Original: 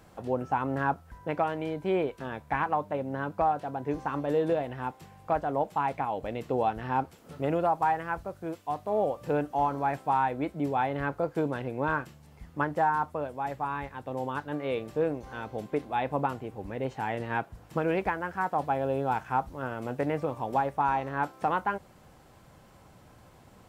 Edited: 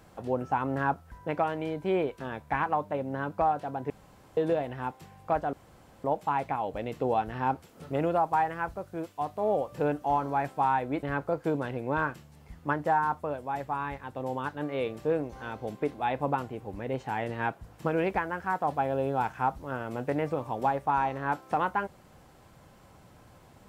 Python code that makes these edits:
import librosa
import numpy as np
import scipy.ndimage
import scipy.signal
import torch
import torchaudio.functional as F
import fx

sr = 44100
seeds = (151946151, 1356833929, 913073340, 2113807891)

y = fx.edit(x, sr, fx.room_tone_fill(start_s=3.9, length_s=0.47),
    fx.insert_room_tone(at_s=5.53, length_s=0.51),
    fx.cut(start_s=10.52, length_s=0.42), tone=tone)